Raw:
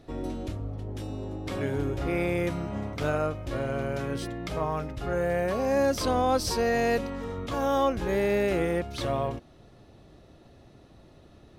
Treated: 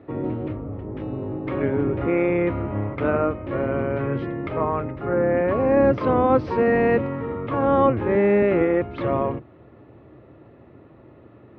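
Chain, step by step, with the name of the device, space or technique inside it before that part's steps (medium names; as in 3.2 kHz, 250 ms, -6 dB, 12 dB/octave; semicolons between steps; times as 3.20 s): high-pass 250 Hz 6 dB/octave; sub-octave bass pedal (octave divider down 1 oct, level +2 dB; cabinet simulation 74–2100 Hz, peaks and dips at 170 Hz -8 dB, 320 Hz +3 dB, 730 Hz -6 dB, 1.6 kHz -5 dB); 4.92–5.37 s: peaking EQ 3 kHz -5.5 dB; trim +8.5 dB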